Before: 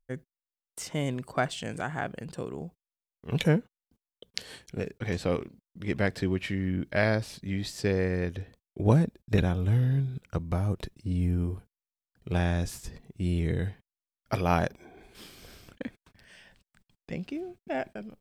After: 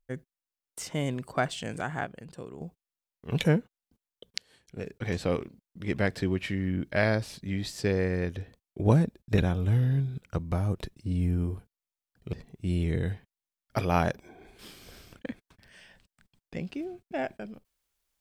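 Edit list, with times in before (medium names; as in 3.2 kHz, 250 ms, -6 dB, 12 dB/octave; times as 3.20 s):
2.05–2.61 s: gain -6 dB
4.38–4.96 s: fade in quadratic, from -19.5 dB
12.33–12.89 s: delete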